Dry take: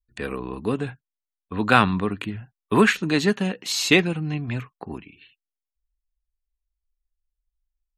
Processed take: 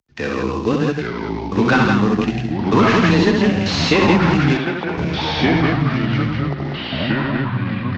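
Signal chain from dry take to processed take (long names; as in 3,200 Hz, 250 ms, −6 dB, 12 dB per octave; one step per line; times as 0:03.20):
variable-slope delta modulation 32 kbit/s
in parallel at 0 dB: output level in coarse steps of 9 dB
on the sum: frequency shifter +16 Hz
on a send: loudspeakers that aren't time-aligned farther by 22 metres −4 dB, 56 metres −4 dB
on the sum: downward compressor, threshold −15 dBFS, peak gain reduction 8.5 dB
delay with pitch and tempo change per echo 782 ms, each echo −3 semitones, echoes 3
0:04.57–0:04.98: bass and treble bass −13 dB, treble −11 dB
level +3.5 dB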